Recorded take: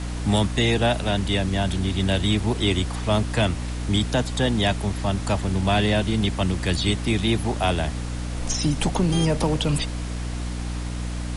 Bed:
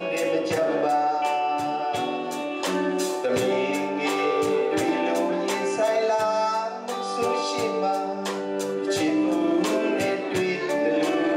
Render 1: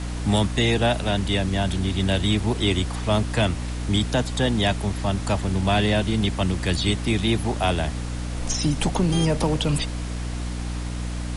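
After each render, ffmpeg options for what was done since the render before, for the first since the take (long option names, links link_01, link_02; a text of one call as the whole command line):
ffmpeg -i in.wav -af anull out.wav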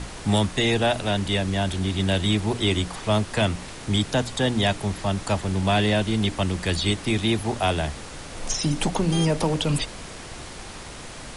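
ffmpeg -i in.wav -af "bandreject=frequency=60:width_type=h:width=6,bandreject=frequency=120:width_type=h:width=6,bandreject=frequency=180:width_type=h:width=6,bandreject=frequency=240:width_type=h:width=6,bandreject=frequency=300:width_type=h:width=6" out.wav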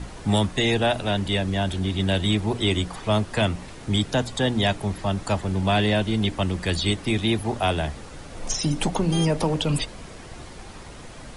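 ffmpeg -i in.wav -af "afftdn=noise_reduction=7:noise_floor=-39" out.wav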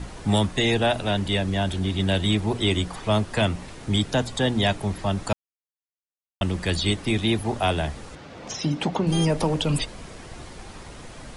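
ffmpeg -i in.wav -filter_complex "[0:a]asettb=1/sr,asplit=3[link_01][link_02][link_03];[link_01]atrim=end=8.154[link_04];[link_02]atrim=start=8.15:end=9.07,asetpts=PTS-STARTPTS,afade=type=in:duration=0.004:curve=qsin,afade=type=out:start_time=0.916:duration=0.004:curve=qsin,highpass=110,lowpass=4400[link_05];[link_03]atrim=start=9.066[link_06];[link_04][link_05]acrossfade=duration=0.004:curve1=hsin:curve2=qsin[link_07];[link_07][link_06]acrossfade=duration=0.004:curve1=qsin:curve2=hsin,asplit=3[link_08][link_09][link_10];[link_08]atrim=end=5.33,asetpts=PTS-STARTPTS,afade=type=out:start_time=5.326:duration=0.004:curve=hsin[link_11];[link_09]atrim=start=5.33:end=6.41,asetpts=PTS-STARTPTS,volume=0[link_12];[link_10]atrim=start=6.41,asetpts=PTS-STARTPTS,afade=type=in:duration=0.004:curve=hsin[link_13];[link_11][link_12][link_13]concat=n=3:v=0:a=1" out.wav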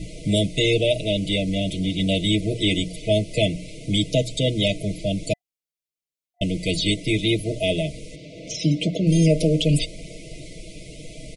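ffmpeg -i in.wav -af "afftfilt=real='re*(1-between(b*sr/4096,710,2000))':imag='im*(1-between(b*sr/4096,710,2000))':win_size=4096:overlap=0.75,aecho=1:1:6.4:0.86" out.wav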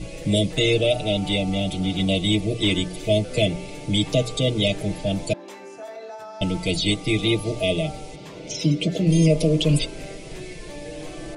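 ffmpeg -i in.wav -i bed.wav -filter_complex "[1:a]volume=-15dB[link_01];[0:a][link_01]amix=inputs=2:normalize=0" out.wav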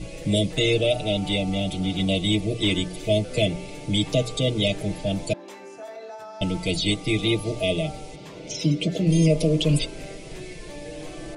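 ffmpeg -i in.wav -af "volume=-1.5dB" out.wav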